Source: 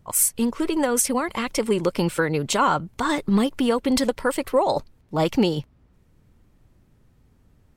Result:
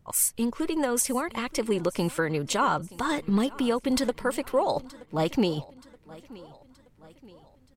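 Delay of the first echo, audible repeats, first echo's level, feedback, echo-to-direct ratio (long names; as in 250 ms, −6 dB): 925 ms, 3, −21.0 dB, 50%, −20.0 dB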